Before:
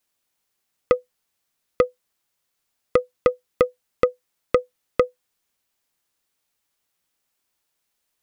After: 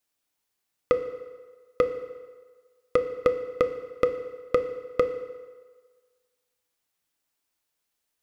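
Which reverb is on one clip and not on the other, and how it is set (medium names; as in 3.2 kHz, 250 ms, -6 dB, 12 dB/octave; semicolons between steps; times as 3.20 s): FDN reverb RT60 1.5 s, low-frequency decay 0.7×, high-frequency decay 0.8×, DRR 7.5 dB; trim -4.5 dB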